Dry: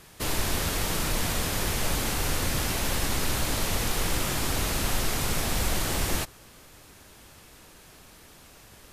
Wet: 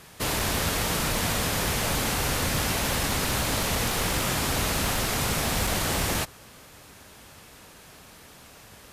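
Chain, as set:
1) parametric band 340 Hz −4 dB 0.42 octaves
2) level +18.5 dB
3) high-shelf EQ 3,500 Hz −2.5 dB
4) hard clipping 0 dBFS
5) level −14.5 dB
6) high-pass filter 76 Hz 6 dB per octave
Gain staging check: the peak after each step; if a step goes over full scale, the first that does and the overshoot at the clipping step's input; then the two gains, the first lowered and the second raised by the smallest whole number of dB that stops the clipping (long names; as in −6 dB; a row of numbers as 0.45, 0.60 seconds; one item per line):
−13.5, +5.0, +4.5, 0.0, −14.5, −13.5 dBFS
step 2, 4.5 dB
step 2 +13.5 dB, step 5 −9.5 dB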